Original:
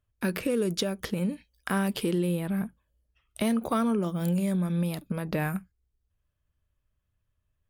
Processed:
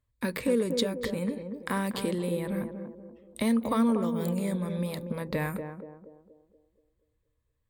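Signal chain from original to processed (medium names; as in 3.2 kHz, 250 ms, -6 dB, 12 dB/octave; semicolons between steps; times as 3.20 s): rippled EQ curve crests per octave 1, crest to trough 8 dB; on a send: band-passed feedback delay 238 ms, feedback 50%, band-pass 400 Hz, level -5 dB; on the sum: trim -1.5 dB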